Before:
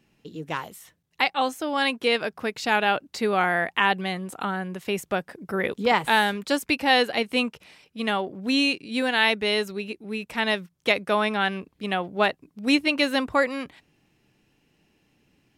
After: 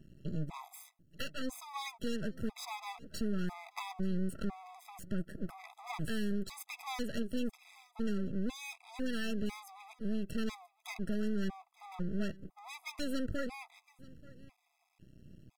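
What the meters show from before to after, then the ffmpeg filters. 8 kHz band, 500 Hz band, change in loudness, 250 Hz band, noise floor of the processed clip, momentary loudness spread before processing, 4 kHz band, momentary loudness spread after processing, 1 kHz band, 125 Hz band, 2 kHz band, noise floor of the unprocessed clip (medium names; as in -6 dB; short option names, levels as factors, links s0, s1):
-9.0 dB, -17.0 dB, -15.0 dB, -9.0 dB, -77 dBFS, 11 LU, -20.5 dB, 16 LU, -21.0 dB, -3.0 dB, -22.0 dB, -69 dBFS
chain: -filter_complex "[0:a]firequalizer=gain_entry='entry(180,0);entry(320,-20);entry(9400,-14)':delay=0.05:min_phase=1,acompressor=threshold=0.00708:ratio=3,aeval=exprs='0.0355*(cos(1*acos(clip(val(0)/0.0355,-1,1)))-cos(1*PI/2))+0.00631*(cos(4*acos(clip(val(0)/0.0355,-1,1)))-cos(4*PI/2))':c=same,aeval=exprs='max(val(0),0)':c=same,asplit=2[s0][s1];[s1]aecho=0:1:884:0.0794[s2];[s0][s2]amix=inputs=2:normalize=0,afftfilt=real='re*gt(sin(2*PI*1*pts/sr)*(1-2*mod(floor(b*sr/1024/660),2)),0)':imag='im*gt(sin(2*PI*1*pts/sr)*(1-2*mod(floor(b*sr/1024/660),2)),0)':win_size=1024:overlap=0.75,volume=7.08"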